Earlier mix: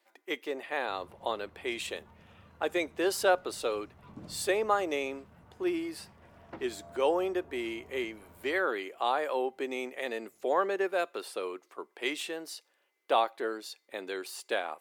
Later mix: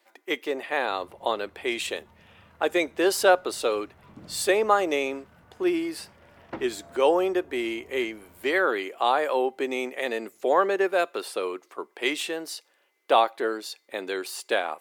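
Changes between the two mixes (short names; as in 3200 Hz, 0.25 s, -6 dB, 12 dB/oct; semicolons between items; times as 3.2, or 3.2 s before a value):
speech +6.5 dB; second sound +9.0 dB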